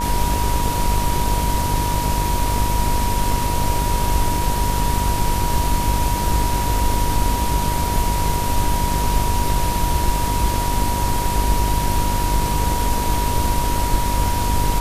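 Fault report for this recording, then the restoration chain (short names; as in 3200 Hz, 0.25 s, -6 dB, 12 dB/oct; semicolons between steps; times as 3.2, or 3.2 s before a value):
buzz 50 Hz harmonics 25 -24 dBFS
tone 960 Hz -23 dBFS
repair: de-hum 50 Hz, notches 25; notch 960 Hz, Q 30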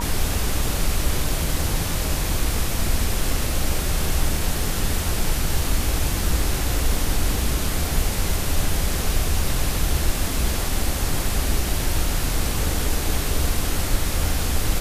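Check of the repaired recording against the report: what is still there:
none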